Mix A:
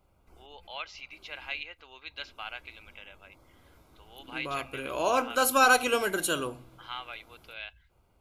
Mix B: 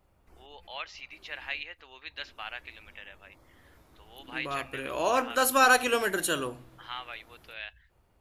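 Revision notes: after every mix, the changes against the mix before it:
master: remove Butterworth band-stop 1800 Hz, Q 5.9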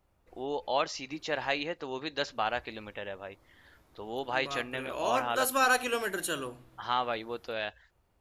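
first voice: remove band-pass 2400 Hz, Q 1.8; second voice -4.5 dB

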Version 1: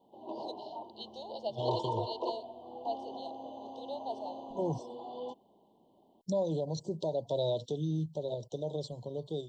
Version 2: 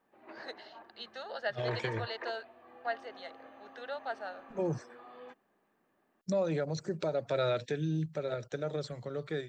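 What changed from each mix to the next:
background -10.5 dB; master: remove Chebyshev band-stop 1000–3000 Hz, order 5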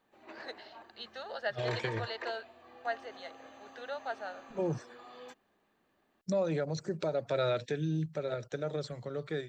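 background: remove BPF 120–2200 Hz

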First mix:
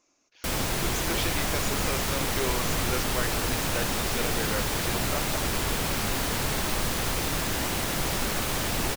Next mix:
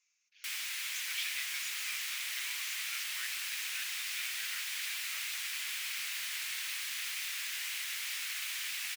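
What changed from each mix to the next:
master: add ladder high-pass 1800 Hz, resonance 40%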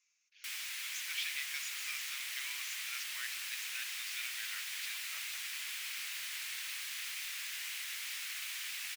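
background: send off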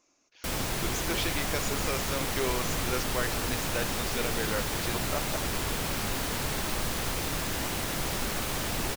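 master: remove ladder high-pass 1800 Hz, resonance 40%

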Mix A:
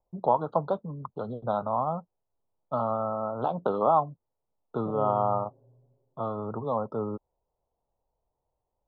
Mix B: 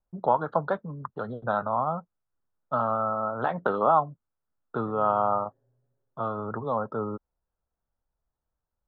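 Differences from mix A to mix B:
second voice -11.0 dB; master: remove Butterworth band-stop 1900 Hz, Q 0.9

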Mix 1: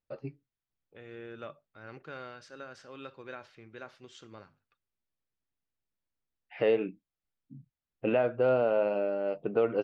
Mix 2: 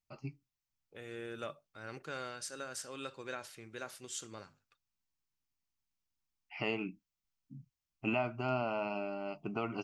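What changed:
first voice: add fixed phaser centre 2500 Hz, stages 8; master: remove air absorption 230 m

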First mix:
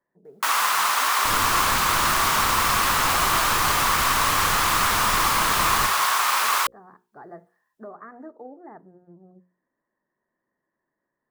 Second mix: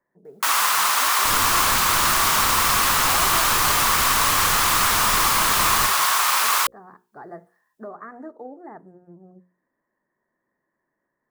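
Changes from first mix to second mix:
speech +3.0 dB; master: add high shelf 3800 Hz +5.5 dB

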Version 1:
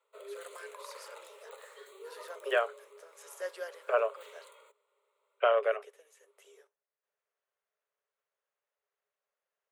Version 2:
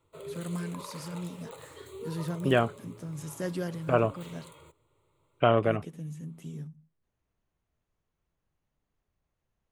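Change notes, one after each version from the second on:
master: remove rippled Chebyshev high-pass 400 Hz, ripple 6 dB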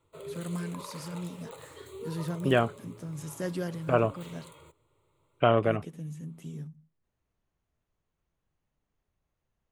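none

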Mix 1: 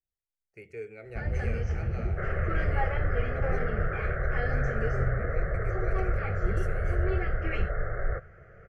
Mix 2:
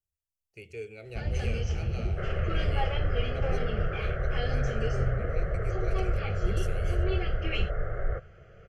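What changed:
speech: add bell 78 Hz +10 dB 0.71 oct; master: add resonant high shelf 2400 Hz +8 dB, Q 3

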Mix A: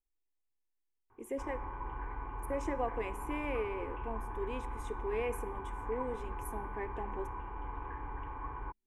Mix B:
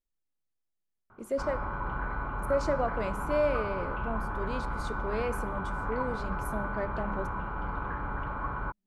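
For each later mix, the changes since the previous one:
background +5.0 dB; master: remove fixed phaser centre 910 Hz, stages 8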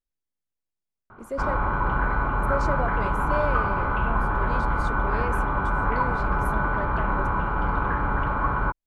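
background +10.0 dB; reverb: off

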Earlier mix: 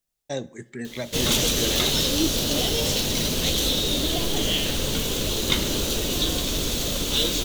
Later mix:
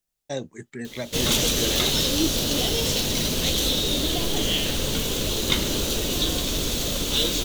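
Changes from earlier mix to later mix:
second voice -9.5 dB; reverb: off

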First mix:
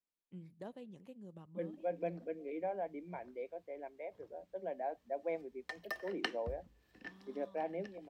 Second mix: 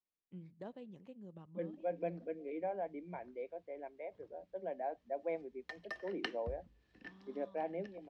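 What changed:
background: add bell 810 Hz -4 dB 2.3 oct; master: add air absorption 100 m

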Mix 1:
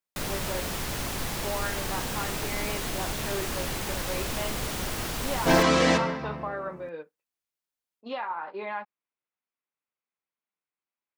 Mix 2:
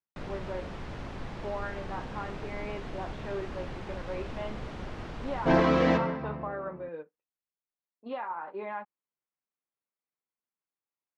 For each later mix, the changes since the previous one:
first sound -4.5 dB; master: add tape spacing loss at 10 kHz 32 dB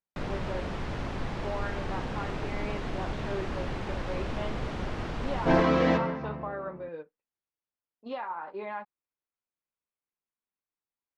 speech: remove BPF 110–3100 Hz; first sound +5.5 dB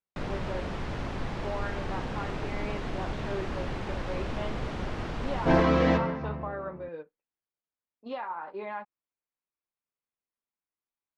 second sound: add bell 80 Hz +8 dB 1 oct

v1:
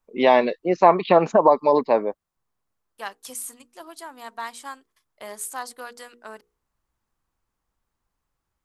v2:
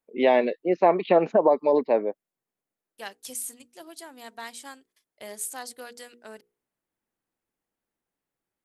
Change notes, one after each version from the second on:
first voice: add BPF 230–2700 Hz; master: add bell 1100 Hz -11.5 dB 0.92 oct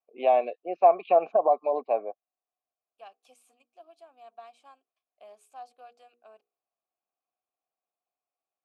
first voice +5.5 dB; master: add vowel filter a

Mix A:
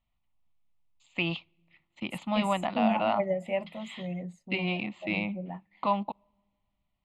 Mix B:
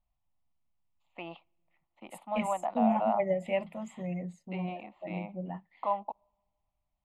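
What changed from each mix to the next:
first voice: add band-pass 740 Hz, Q 2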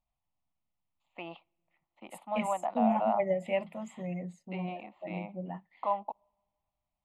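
master: add low shelf 79 Hz -8.5 dB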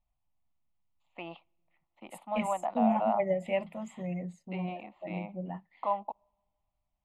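master: add low shelf 79 Hz +8.5 dB

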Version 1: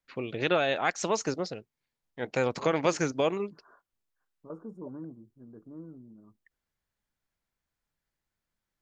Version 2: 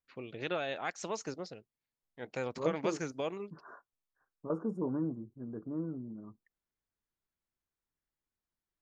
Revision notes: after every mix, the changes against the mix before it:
first voice -9.5 dB; second voice +7.5 dB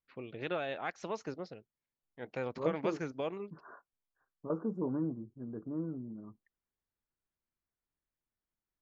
master: add air absorption 170 m

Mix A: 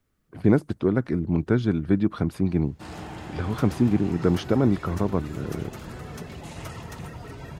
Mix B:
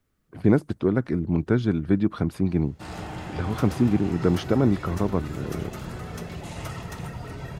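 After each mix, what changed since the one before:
reverb: on, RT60 0.65 s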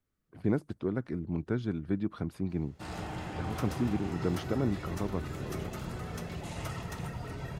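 speech -10.0 dB; background -3.5 dB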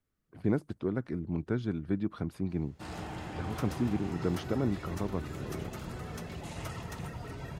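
background: send -8.0 dB

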